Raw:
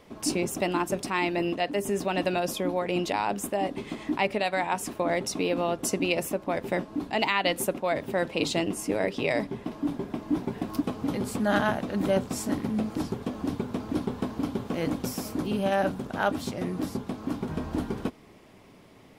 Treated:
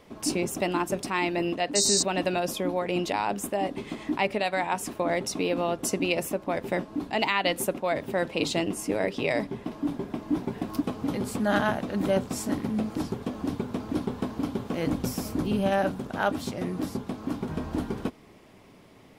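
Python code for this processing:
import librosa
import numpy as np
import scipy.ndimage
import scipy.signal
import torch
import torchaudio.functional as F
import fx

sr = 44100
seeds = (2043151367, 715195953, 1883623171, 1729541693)

y = fx.spec_paint(x, sr, seeds[0], shape='noise', start_s=1.75, length_s=0.28, low_hz=3700.0, high_hz=8700.0, level_db=-24.0)
y = fx.low_shelf(y, sr, hz=130.0, db=8.5, at=(14.87, 15.79))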